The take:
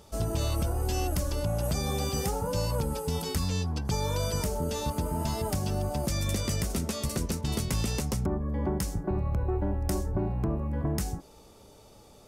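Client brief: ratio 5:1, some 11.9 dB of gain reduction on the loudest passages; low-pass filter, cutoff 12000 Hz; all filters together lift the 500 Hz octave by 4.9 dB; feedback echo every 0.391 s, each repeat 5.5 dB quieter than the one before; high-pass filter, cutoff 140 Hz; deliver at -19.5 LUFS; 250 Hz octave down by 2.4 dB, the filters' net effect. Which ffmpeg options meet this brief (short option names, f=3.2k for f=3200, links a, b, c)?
-af "highpass=140,lowpass=12k,equalizer=f=250:t=o:g=-5,equalizer=f=500:t=o:g=7.5,acompressor=threshold=-39dB:ratio=5,aecho=1:1:391|782|1173|1564|1955|2346|2737:0.531|0.281|0.149|0.079|0.0419|0.0222|0.0118,volume=21dB"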